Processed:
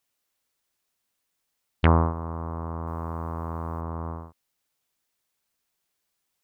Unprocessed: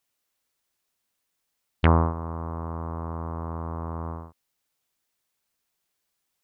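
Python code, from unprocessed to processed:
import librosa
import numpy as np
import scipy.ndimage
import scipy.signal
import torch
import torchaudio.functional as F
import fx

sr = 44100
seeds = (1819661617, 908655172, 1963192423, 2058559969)

y = fx.high_shelf(x, sr, hz=2500.0, db=10.5, at=(2.87, 3.81))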